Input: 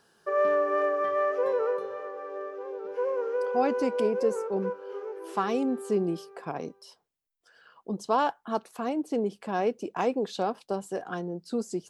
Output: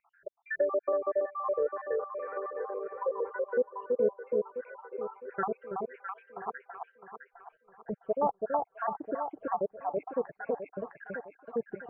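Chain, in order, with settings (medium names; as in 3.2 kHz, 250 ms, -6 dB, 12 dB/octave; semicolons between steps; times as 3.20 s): random holes in the spectrogram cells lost 81%; peaking EQ 250 Hz -13.5 dB 1.4 oct; on a send: echo whose repeats swap between lows and highs 329 ms, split 940 Hz, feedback 61%, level -2.5 dB; on the sum: low-pass that closes with the level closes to 680 Hz, closed at -31.5 dBFS; steep low-pass 2.1 kHz 48 dB/octave; trim +6.5 dB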